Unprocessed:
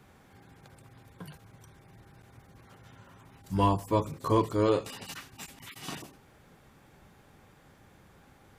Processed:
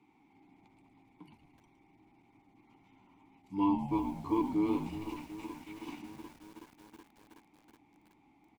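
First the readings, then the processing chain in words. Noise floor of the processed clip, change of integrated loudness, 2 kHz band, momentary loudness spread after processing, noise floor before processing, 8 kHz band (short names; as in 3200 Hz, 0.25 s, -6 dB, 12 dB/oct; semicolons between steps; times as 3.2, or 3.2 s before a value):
-67 dBFS, -5.0 dB, -7.5 dB, 20 LU, -59 dBFS, under -10 dB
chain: vowel filter u; high shelf 4200 Hz +9 dB; on a send: frequency-shifting echo 0.112 s, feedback 51%, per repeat -78 Hz, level -9.5 dB; on the sum: lo-fi delay 0.373 s, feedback 80%, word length 9-bit, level -12.5 dB; gain +4 dB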